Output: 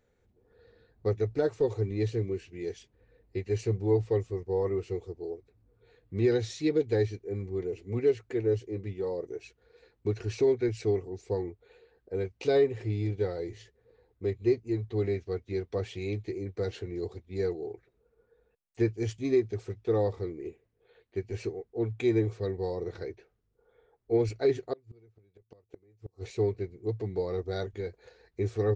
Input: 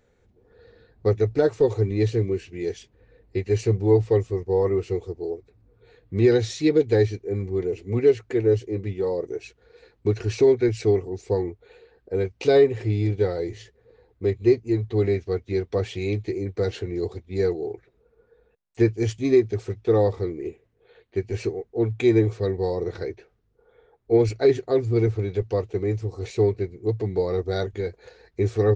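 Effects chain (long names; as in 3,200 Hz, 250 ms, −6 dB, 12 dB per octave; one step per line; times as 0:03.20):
0:24.73–0:26.35: gate with flip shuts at −19 dBFS, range −31 dB
level −7.5 dB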